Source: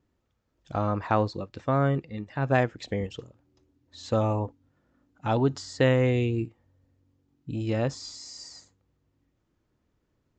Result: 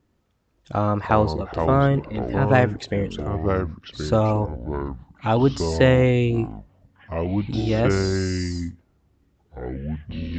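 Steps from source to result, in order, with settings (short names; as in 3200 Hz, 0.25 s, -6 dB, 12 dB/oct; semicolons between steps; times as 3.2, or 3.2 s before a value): echoes that change speed 97 ms, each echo -5 st, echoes 3, each echo -6 dB; gain +5.5 dB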